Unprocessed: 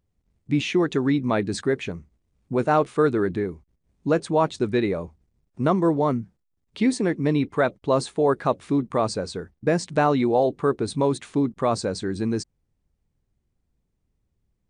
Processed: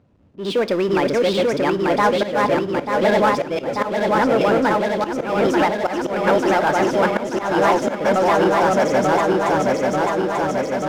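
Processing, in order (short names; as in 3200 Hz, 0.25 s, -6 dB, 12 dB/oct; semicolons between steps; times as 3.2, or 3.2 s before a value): regenerating reverse delay 0.6 s, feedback 80%, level -0.5 dB; air absorption 190 m; hard clip -9 dBFS, distortion -28 dB; auto swell 0.318 s; HPF 160 Hz 6 dB/oct; power-law curve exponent 0.7; speed mistake 33 rpm record played at 45 rpm; on a send at -15 dB: reverb RT60 0.55 s, pre-delay 3 ms; on the sum: mismatched tape noise reduction decoder only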